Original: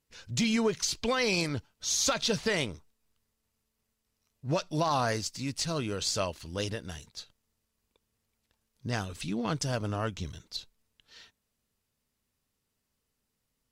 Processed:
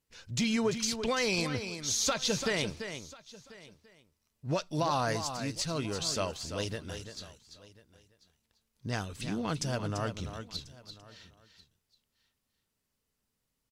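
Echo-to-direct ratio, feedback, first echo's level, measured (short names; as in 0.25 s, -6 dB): -8.5 dB, no steady repeat, -9.0 dB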